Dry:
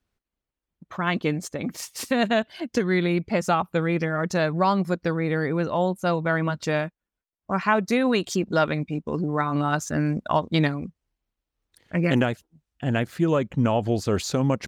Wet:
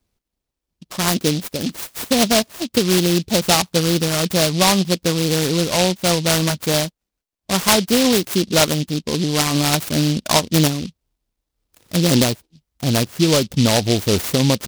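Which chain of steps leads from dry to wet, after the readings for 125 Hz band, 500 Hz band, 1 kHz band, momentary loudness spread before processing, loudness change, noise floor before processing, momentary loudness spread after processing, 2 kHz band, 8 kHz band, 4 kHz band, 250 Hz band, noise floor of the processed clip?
+6.0 dB, +5.0 dB, +2.5 dB, 7 LU, +7.0 dB, under -85 dBFS, 7 LU, +3.5 dB, +18.0 dB, +16.5 dB, +5.5 dB, -82 dBFS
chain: delay time shaken by noise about 3.9 kHz, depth 0.17 ms; trim +6 dB

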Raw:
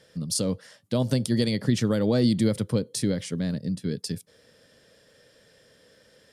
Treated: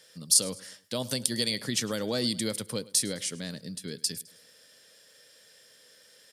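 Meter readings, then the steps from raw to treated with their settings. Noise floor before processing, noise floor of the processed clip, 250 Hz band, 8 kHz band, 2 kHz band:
-60 dBFS, -58 dBFS, -10.0 dB, +7.5 dB, +0.5 dB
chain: tilt EQ +3.5 dB/octave; on a send: feedback delay 105 ms, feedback 46%, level -21 dB; on the sum: trim -3 dB

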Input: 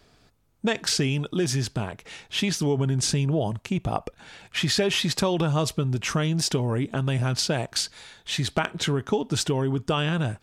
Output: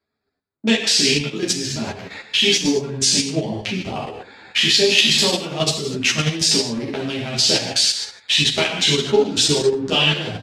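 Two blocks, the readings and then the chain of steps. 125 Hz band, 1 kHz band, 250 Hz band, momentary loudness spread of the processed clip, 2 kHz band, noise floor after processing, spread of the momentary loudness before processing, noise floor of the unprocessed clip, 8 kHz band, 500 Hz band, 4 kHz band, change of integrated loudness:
-2.5 dB, +2.0 dB, +3.5 dB, 11 LU, +9.5 dB, -78 dBFS, 7 LU, -61 dBFS, +9.5 dB, +6.5 dB, +13.0 dB, +8.0 dB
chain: local Wiener filter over 15 samples; on a send: delay 117 ms -18.5 dB; on the sum: dynamic bell 1.4 kHz, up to -7 dB, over -45 dBFS, Q 1.6; in parallel at 0 dB: compression 10:1, threshold -32 dBFS, peak gain reduction 13.5 dB; on the sum: gate -46 dBFS, range -22 dB; frequency weighting D; gated-style reverb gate 270 ms falling, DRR -2.5 dB; level held to a coarse grid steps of 9 dB; three-phase chorus; trim +5 dB

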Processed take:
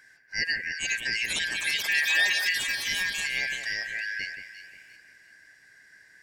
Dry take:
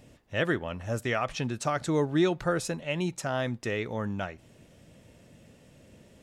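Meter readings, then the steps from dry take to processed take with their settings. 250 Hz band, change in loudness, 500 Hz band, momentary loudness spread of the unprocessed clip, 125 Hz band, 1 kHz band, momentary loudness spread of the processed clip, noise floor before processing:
-21.0 dB, +4.0 dB, -20.0 dB, 8 LU, under -20 dB, -12.5 dB, 13 LU, -57 dBFS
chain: four frequency bands reordered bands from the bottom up 3142; ever faster or slower copies 556 ms, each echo +6 st, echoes 3; on a send: echo whose repeats swap between lows and highs 176 ms, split 2.3 kHz, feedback 56%, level -6 dB; on the sum: trim -1.5 dB

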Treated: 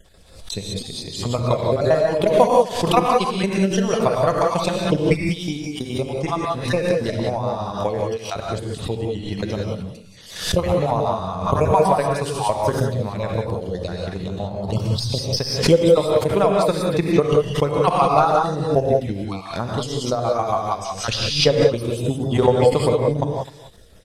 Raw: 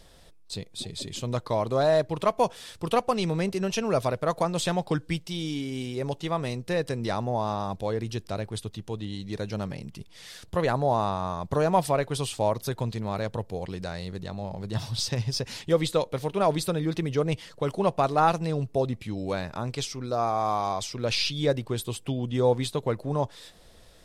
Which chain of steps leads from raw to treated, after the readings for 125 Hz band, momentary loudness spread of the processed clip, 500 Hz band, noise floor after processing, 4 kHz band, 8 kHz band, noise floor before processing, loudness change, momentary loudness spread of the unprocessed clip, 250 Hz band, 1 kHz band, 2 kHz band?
+7.0 dB, 12 LU, +8.5 dB, -41 dBFS, +7.0 dB, +5.5 dB, -51 dBFS, +8.0 dB, 11 LU, +7.5 dB, +7.0 dB, +6.5 dB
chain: random holes in the spectrogram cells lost 35%; delay 256 ms -15.5 dB; transient shaper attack +10 dB, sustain -2 dB; gated-style reverb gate 210 ms rising, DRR 0 dB; swell ahead of each attack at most 88 dB/s

